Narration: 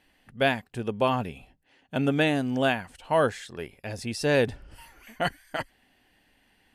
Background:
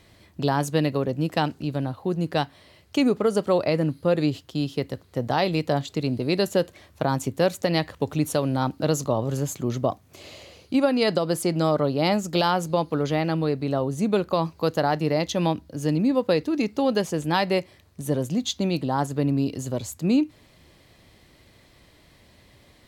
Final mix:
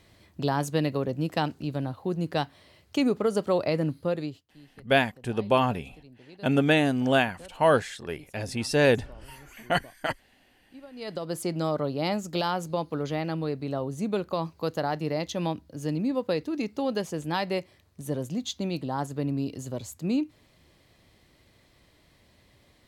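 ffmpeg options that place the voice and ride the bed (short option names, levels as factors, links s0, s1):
-filter_complex "[0:a]adelay=4500,volume=1.26[s0];[1:a]volume=7.08,afade=t=out:st=3.95:d=0.5:silence=0.0707946,afade=t=in:st=10.91:d=0.51:silence=0.0944061[s1];[s0][s1]amix=inputs=2:normalize=0"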